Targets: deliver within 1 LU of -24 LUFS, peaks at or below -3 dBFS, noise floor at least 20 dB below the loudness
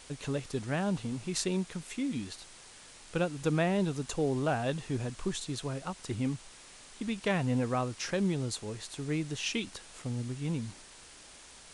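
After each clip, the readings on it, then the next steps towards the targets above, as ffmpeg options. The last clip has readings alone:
noise floor -53 dBFS; noise floor target -54 dBFS; loudness -33.5 LUFS; peak level -15.0 dBFS; loudness target -24.0 LUFS
-> -af "afftdn=nr=6:nf=-53"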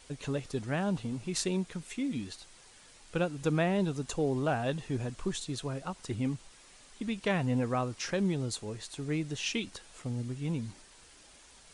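noise floor -57 dBFS; loudness -33.5 LUFS; peak level -15.0 dBFS; loudness target -24.0 LUFS
-> -af "volume=2.99"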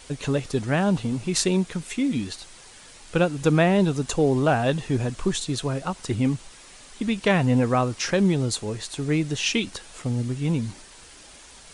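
loudness -24.0 LUFS; peak level -5.5 dBFS; noise floor -48 dBFS

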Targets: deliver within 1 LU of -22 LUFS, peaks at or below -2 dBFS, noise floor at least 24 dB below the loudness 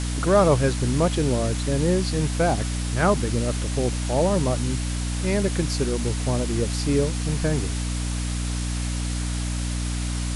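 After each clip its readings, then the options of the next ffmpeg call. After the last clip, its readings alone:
hum 60 Hz; highest harmonic 300 Hz; hum level -24 dBFS; noise floor -27 dBFS; noise floor target -48 dBFS; loudness -24.0 LUFS; peak level -7.0 dBFS; loudness target -22.0 LUFS
-> -af "bandreject=f=60:t=h:w=4,bandreject=f=120:t=h:w=4,bandreject=f=180:t=h:w=4,bandreject=f=240:t=h:w=4,bandreject=f=300:t=h:w=4"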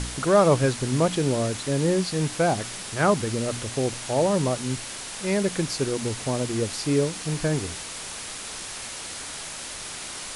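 hum not found; noise floor -36 dBFS; noise floor target -50 dBFS
-> -af "afftdn=nr=14:nf=-36"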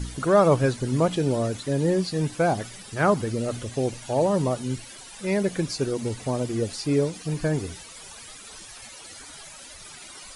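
noise floor -44 dBFS; noise floor target -49 dBFS
-> -af "afftdn=nr=6:nf=-44"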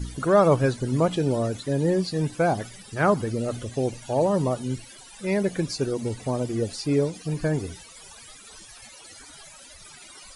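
noise floor -47 dBFS; noise floor target -49 dBFS
-> -af "afftdn=nr=6:nf=-47"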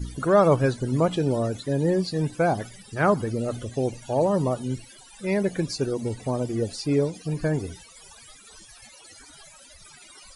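noise floor -50 dBFS; loudness -25.0 LUFS; peak level -8.0 dBFS; loudness target -22.0 LUFS
-> -af "volume=1.41"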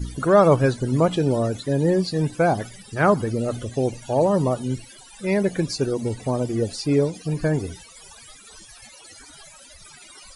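loudness -22.0 LUFS; peak level -5.0 dBFS; noise floor -47 dBFS

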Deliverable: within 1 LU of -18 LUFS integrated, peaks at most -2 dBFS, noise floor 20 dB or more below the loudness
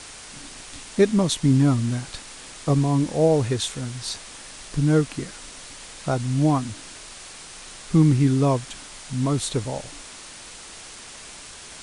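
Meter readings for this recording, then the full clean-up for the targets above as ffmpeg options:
noise floor -42 dBFS; noise floor target -43 dBFS; loudness -22.5 LUFS; peak level -7.0 dBFS; loudness target -18.0 LUFS
-> -af "afftdn=nr=6:nf=-42"
-af "volume=1.68"

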